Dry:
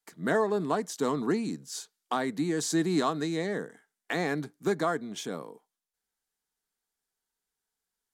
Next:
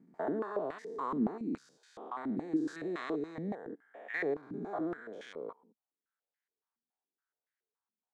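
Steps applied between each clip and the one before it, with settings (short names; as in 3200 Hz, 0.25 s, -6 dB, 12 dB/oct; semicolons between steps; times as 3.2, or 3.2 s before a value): stepped spectrum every 0.2 s; stepped band-pass 7.1 Hz 230–1900 Hz; gain +6 dB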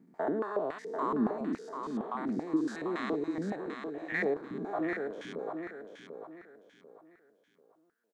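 low shelf 210 Hz -4 dB; on a send: feedback echo 0.742 s, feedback 31%, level -6.5 dB; on the sum: gain +3.5 dB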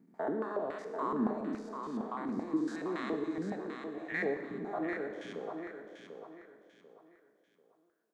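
Schroeder reverb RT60 1.4 s, combs from 29 ms, DRR 8 dB; gain -3 dB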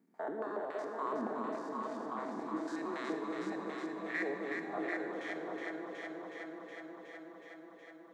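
HPF 540 Hz 6 dB/oct; echo with dull and thin repeats by turns 0.184 s, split 830 Hz, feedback 88%, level -3.5 dB; gain -1.5 dB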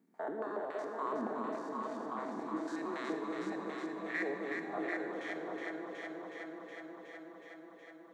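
notch 5000 Hz, Q 21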